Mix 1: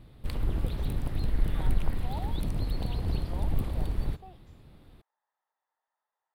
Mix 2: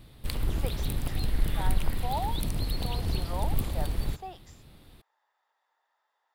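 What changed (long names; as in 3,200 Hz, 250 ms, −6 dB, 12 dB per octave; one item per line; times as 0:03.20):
speech +9.0 dB
master: add high-shelf EQ 2,600 Hz +11.5 dB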